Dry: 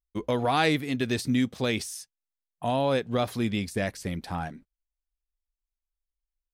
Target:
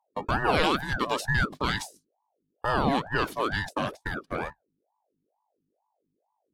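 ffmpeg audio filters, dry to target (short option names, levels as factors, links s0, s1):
-af "afftfilt=real='real(if(between(b,1,1008),(2*floor((b-1)/48)+1)*48-b,b),0)':imag='imag(if(between(b,1,1008),(2*floor((b-1)/48)+1)*48-b,b),0)*if(between(b,1,1008),-1,1)':win_size=2048:overlap=0.75,aeval=exprs='val(0)+0.00398*(sin(2*PI*50*n/s)+sin(2*PI*2*50*n/s)/2+sin(2*PI*3*50*n/s)/3+sin(2*PI*4*50*n/s)/4+sin(2*PI*5*50*n/s)/5)':c=same,lowshelf=f=79:g=11,agate=range=0.0178:threshold=0.0224:ratio=16:detection=peak,aeval=exprs='val(0)*sin(2*PI*570*n/s+570*0.65/2.2*sin(2*PI*2.2*n/s))':c=same,volume=1.26"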